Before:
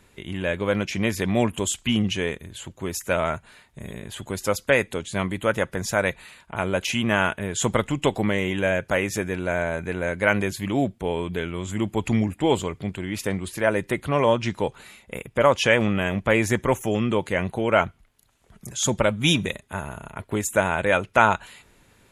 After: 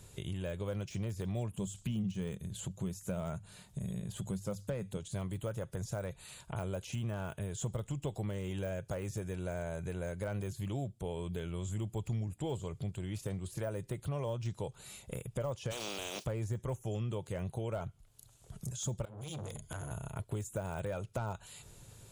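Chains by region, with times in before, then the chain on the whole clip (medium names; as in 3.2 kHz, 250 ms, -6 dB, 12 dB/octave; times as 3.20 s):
1.54–4.97 s: peaking EQ 190 Hz +13 dB 0.4 oct + hum notches 50/100 Hz
15.70–16.24 s: spectral contrast reduction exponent 0.32 + high-pass 240 Hz 24 dB/octave + high-order bell 3.7 kHz +9.5 dB
19.05–19.91 s: rippled EQ curve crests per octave 1.8, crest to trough 13 dB + compression 10:1, threshold -27 dBFS + transformer saturation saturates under 1.8 kHz
whole clip: de-esser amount 95%; graphic EQ 125/250/1000/2000/8000 Hz +9/-9/-4/-11/+6 dB; compression 3:1, threshold -41 dBFS; trim +1.5 dB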